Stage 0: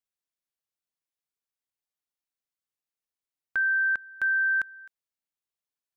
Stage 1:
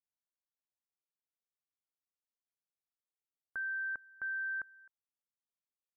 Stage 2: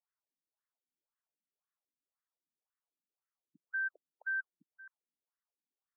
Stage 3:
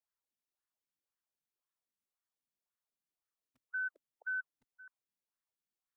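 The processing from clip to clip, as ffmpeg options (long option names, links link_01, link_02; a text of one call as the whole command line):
ffmpeg -i in.wav -af "lowpass=frequency=1500:width=0.5412,lowpass=frequency=1500:width=1.3066,volume=-9dB" out.wav
ffmpeg -i in.wav -filter_complex "[0:a]asplit=2[link_01][link_02];[link_02]alimiter=level_in=18.5dB:limit=-24dB:level=0:latency=1,volume=-18.5dB,volume=2.5dB[link_03];[link_01][link_03]amix=inputs=2:normalize=0,afftfilt=real='re*between(b*sr/1024,220*pow(1500/220,0.5+0.5*sin(2*PI*1.9*pts/sr))/1.41,220*pow(1500/220,0.5+0.5*sin(2*PI*1.9*pts/sr))*1.41)':imag='im*between(b*sr/1024,220*pow(1500/220,0.5+0.5*sin(2*PI*1.9*pts/sr))/1.41,220*pow(1500/220,0.5+0.5*sin(2*PI*1.9*pts/sr))*1.41)':win_size=1024:overlap=0.75" out.wav
ffmpeg -i in.wav -filter_complex "[0:a]acrossover=split=320|480|670[link_01][link_02][link_03][link_04];[link_01]aeval=exprs='(mod(3350*val(0)+1,2)-1)/3350':channel_layout=same[link_05];[link_05][link_02][link_03][link_04]amix=inputs=4:normalize=0,afreqshift=-45,volume=-2dB" out.wav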